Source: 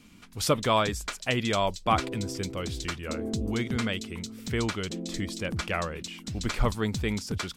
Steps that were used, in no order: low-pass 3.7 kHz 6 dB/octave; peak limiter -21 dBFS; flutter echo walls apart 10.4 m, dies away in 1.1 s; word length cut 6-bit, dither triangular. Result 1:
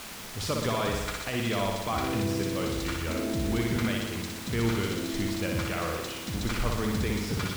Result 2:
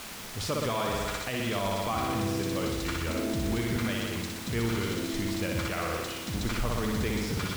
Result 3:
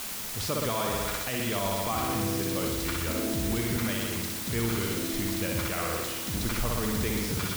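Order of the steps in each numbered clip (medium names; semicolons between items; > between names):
peak limiter > flutter echo > word length cut > low-pass; flutter echo > peak limiter > word length cut > low-pass; flutter echo > peak limiter > low-pass > word length cut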